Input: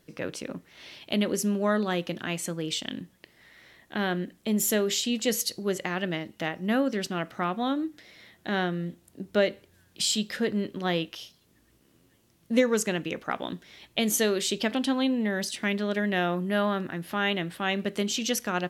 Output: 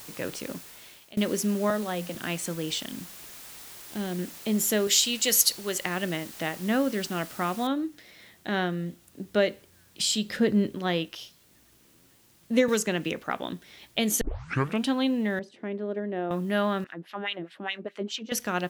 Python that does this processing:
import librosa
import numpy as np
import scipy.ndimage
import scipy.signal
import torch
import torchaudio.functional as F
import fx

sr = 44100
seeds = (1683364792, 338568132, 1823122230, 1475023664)

y = fx.cheby_ripple_highpass(x, sr, hz=170.0, ripple_db=6, at=(1.7, 2.15))
y = fx.peak_eq(y, sr, hz=1500.0, db=-13.0, octaves=2.7, at=(2.86, 4.19))
y = fx.tilt_eq(y, sr, slope=3.0, at=(4.87, 5.86))
y = fx.noise_floor_step(y, sr, seeds[0], at_s=7.67, before_db=-45, after_db=-62, tilt_db=0.0)
y = fx.low_shelf(y, sr, hz=370.0, db=7.5, at=(10.25, 10.75))
y = fx.band_squash(y, sr, depth_pct=70, at=(12.68, 13.12))
y = fx.bandpass_q(y, sr, hz=400.0, q=1.2, at=(15.39, 16.31))
y = fx.filter_lfo_bandpass(y, sr, shape='sine', hz=4.8, low_hz=270.0, high_hz=3500.0, q=1.7, at=(16.84, 18.32))
y = fx.edit(y, sr, fx.fade_out_to(start_s=0.51, length_s=0.66, floor_db=-22.5),
    fx.tape_start(start_s=14.21, length_s=0.66), tone=tone)